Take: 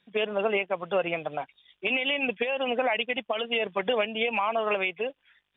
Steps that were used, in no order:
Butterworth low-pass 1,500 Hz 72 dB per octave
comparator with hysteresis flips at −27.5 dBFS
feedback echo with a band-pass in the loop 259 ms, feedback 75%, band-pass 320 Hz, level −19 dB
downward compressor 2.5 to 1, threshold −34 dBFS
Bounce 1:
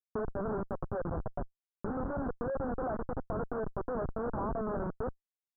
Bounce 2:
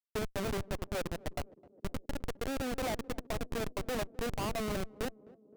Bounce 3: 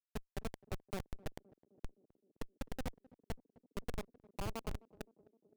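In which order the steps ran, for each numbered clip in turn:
feedback echo with a band-pass in the loop, then comparator with hysteresis, then downward compressor, then Butterworth low-pass
Butterworth low-pass, then comparator with hysteresis, then downward compressor, then feedback echo with a band-pass in the loop
downward compressor, then Butterworth low-pass, then comparator with hysteresis, then feedback echo with a band-pass in the loop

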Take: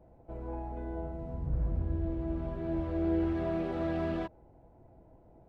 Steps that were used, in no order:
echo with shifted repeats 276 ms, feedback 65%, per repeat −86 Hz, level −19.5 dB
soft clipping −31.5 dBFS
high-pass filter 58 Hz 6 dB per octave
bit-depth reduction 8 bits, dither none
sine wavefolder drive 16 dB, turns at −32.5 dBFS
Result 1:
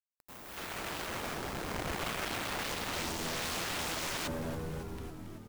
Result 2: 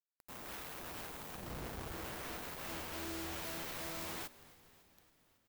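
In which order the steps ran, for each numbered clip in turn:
high-pass filter, then soft clipping, then bit-depth reduction, then echo with shifted repeats, then sine wavefolder
high-pass filter, then soft clipping, then bit-depth reduction, then sine wavefolder, then echo with shifted repeats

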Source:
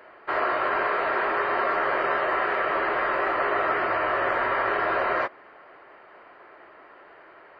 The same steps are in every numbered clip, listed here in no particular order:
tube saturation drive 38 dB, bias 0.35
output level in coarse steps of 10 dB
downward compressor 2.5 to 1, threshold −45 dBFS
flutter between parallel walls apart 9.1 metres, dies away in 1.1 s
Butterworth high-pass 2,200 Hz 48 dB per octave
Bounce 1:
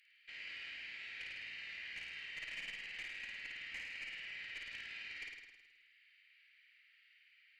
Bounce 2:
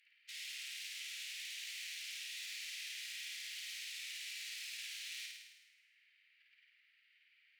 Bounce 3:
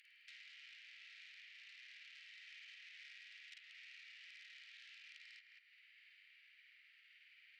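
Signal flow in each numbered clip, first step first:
Butterworth high-pass, then output level in coarse steps, then tube saturation, then downward compressor, then flutter between parallel walls
tube saturation, then output level in coarse steps, then Butterworth high-pass, then downward compressor, then flutter between parallel walls
flutter between parallel walls, then output level in coarse steps, then downward compressor, then tube saturation, then Butterworth high-pass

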